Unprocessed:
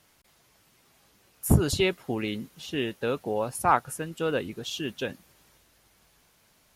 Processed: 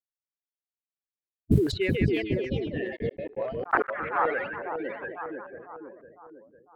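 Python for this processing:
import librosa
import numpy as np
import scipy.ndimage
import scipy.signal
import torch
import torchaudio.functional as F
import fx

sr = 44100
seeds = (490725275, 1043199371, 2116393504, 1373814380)

y = fx.bin_expand(x, sr, power=2.0)
y = fx.filter_lfo_lowpass(y, sr, shape='square', hz=1.2, low_hz=380.0, high_hz=1700.0, q=2.6)
y = fx.echo_split(y, sr, split_hz=1300.0, low_ms=503, high_ms=149, feedback_pct=52, wet_db=-3.5)
y = fx.mod_noise(y, sr, seeds[0], snr_db=32, at=(1.5, 1.91))
y = fx.peak_eq(y, sr, hz=5700.0, db=-6.5, octaves=0.65)
y = fx.echo_pitch(y, sr, ms=619, semitones=3, count=3, db_per_echo=-6.0)
y = fx.step_gate(y, sr, bpm=165, pattern='.x.x.xxx', floor_db=-60.0, edge_ms=4.5, at=(2.95, 3.88), fade=0.02)
y = fx.peak_eq(y, sr, hz=1200.0, db=-10.0, octaves=0.44, at=(4.58, 5.02))
y = fx.env_lowpass(y, sr, base_hz=920.0, full_db=-19.0)
y = fx.sustainer(y, sr, db_per_s=76.0)
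y = y * librosa.db_to_amplitude(-2.0)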